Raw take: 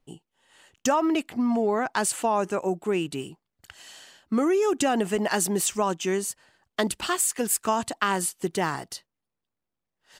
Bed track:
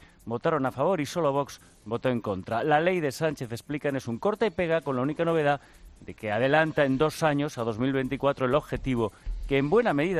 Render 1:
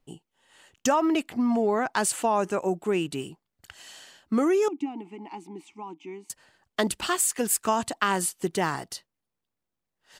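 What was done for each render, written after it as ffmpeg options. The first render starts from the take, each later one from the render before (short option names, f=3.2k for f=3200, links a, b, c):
-filter_complex "[0:a]asettb=1/sr,asplit=3[a][b][c];[a]atrim=end=4.684[d];[b]atrim=start=4.68:end=6.3,asetpts=PTS-STARTPTS,afade=t=in:d=0.004:c=qsin,afade=t=out:st=1.616:d=0.004:c=qsin,asplit=3[e][f][g];[e]bandpass=f=300:t=q:w=8,volume=0dB[h];[f]bandpass=f=870:t=q:w=8,volume=-6dB[i];[g]bandpass=f=2.24k:t=q:w=8,volume=-9dB[j];[h][i][j]amix=inputs=3:normalize=0[k];[c]atrim=start=6.296[l];[d][k]acrossfade=d=0.004:c1=hsin:c2=qsin[m];[m][l]acrossfade=d=0.004:c1=qsin:c2=hsin"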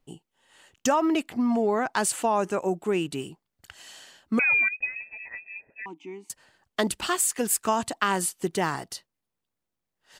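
-filter_complex "[0:a]asettb=1/sr,asplit=3[a][b][c];[a]atrim=end=4.394[d];[b]atrim=start=4.39:end=5.86,asetpts=PTS-STARTPTS,afade=t=in:d=0.004:c=qsin,afade=t=out:st=1.466:d=0.004:c=qsin,lowpass=f=2.4k:t=q:w=0.5098,lowpass=f=2.4k:t=q:w=0.6013,lowpass=f=2.4k:t=q:w=0.9,lowpass=f=2.4k:t=q:w=2.563,afreqshift=-2800[e];[c]atrim=start=5.856[f];[d][e]acrossfade=d=0.004:c1=hsin:c2=qsin[g];[g][f]acrossfade=d=0.004:c1=qsin:c2=hsin"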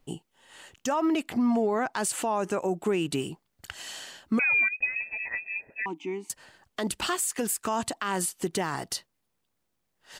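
-filter_complex "[0:a]asplit=2[a][b];[b]acompressor=threshold=-33dB:ratio=6,volume=1dB[c];[a][c]amix=inputs=2:normalize=0,alimiter=limit=-18.5dB:level=0:latency=1:release=142"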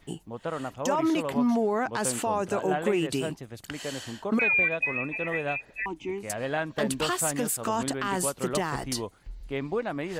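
-filter_complex "[1:a]volume=-7.5dB[a];[0:a][a]amix=inputs=2:normalize=0"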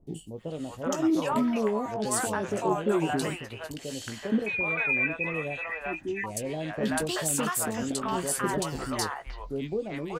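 -filter_complex "[0:a]asplit=2[a][b];[b]adelay=19,volume=-10dB[c];[a][c]amix=inputs=2:normalize=0,acrossover=split=630|2600[d][e][f];[f]adelay=70[g];[e]adelay=380[h];[d][h][g]amix=inputs=3:normalize=0"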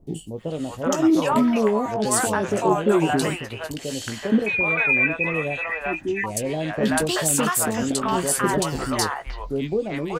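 -af "volume=7dB"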